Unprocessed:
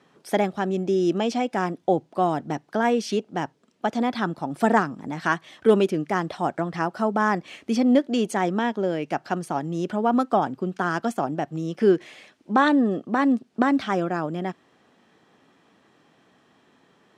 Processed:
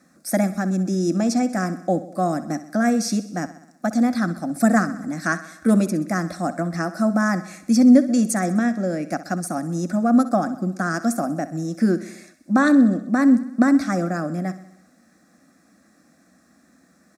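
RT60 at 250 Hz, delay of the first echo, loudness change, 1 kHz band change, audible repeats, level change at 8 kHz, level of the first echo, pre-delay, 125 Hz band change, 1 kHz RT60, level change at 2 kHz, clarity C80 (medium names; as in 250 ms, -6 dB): no reverb, 64 ms, +3.0 dB, -2.0 dB, 5, +11.0 dB, -15.0 dB, no reverb, +5.0 dB, no reverb, +1.5 dB, no reverb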